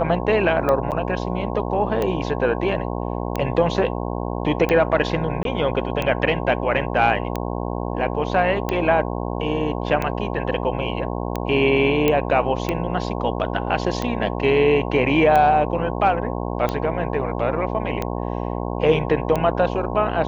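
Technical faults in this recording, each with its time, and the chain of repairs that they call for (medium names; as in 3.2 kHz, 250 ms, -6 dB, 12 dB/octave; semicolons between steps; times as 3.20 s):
buzz 60 Hz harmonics 18 -26 dBFS
tick 45 rpm -10 dBFS
0.91–0.92 s: dropout 8 ms
5.43–5.45 s: dropout 22 ms
12.08 s: pop -6 dBFS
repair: de-click; de-hum 60 Hz, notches 18; interpolate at 0.91 s, 8 ms; interpolate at 5.43 s, 22 ms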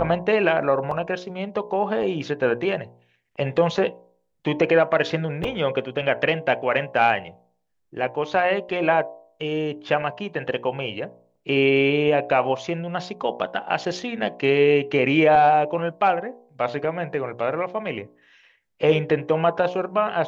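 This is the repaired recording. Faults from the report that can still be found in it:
nothing left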